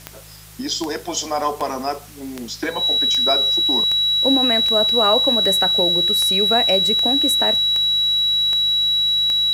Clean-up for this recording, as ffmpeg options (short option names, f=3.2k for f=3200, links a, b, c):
-af "adeclick=t=4,bandreject=f=52.9:t=h:w=4,bandreject=f=105.8:t=h:w=4,bandreject=f=158.7:t=h:w=4,bandreject=f=3.9k:w=30,afwtdn=0.0071"